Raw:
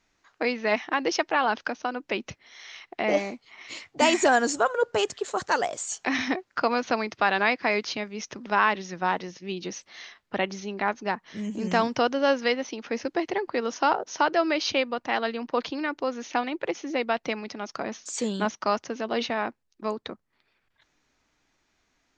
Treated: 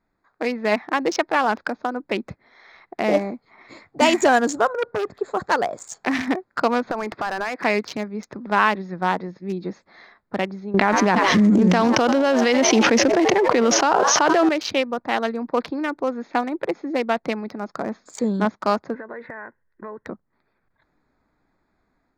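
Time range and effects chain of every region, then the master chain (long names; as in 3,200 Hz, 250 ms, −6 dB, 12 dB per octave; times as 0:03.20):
0:04.73–0:05.15: high-frequency loss of the air 160 metres + saturating transformer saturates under 1,500 Hz
0:06.91–0:07.64: downward compressor 4 to 1, threshold −37 dBFS + mid-hump overdrive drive 23 dB, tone 2,500 Hz, clips at −16 dBFS
0:10.74–0:14.49: echo with shifted repeats 82 ms, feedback 59%, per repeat +97 Hz, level −18 dB + envelope flattener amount 100%
0:18.94–0:20.07: low-pass with resonance 1,800 Hz, resonance Q 8.6 + comb filter 2 ms, depth 46% + downward compressor 4 to 1, threshold −37 dBFS
whole clip: adaptive Wiener filter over 15 samples; parametric band 190 Hz +3.5 dB 0.66 octaves; automatic gain control gain up to 5 dB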